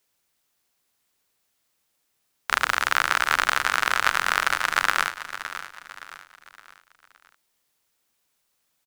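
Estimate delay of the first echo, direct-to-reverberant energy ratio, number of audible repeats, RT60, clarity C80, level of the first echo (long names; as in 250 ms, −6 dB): 566 ms, no reverb audible, 3, no reverb audible, no reverb audible, −12.0 dB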